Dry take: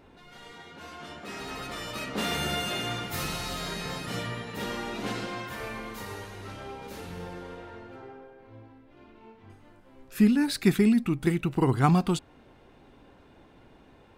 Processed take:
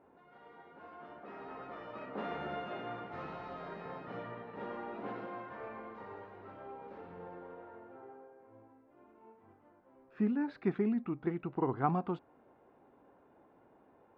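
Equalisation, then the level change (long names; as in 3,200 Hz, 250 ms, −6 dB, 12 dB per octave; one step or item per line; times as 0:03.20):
high-pass filter 650 Hz 6 dB per octave
low-pass filter 1,000 Hz 12 dB per octave
high-frequency loss of the air 110 metres
−1.0 dB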